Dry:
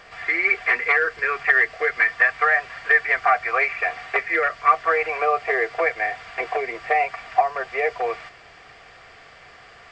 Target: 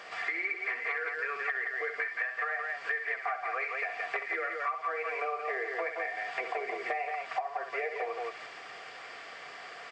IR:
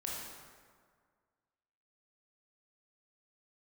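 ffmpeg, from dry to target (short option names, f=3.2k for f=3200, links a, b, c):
-filter_complex "[0:a]highpass=270,asplit=2[a][b];[b]aecho=0:1:64.14|172:0.355|0.501[c];[a][c]amix=inputs=2:normalize=0,acompressor=threshold=-32dB:ratio=6"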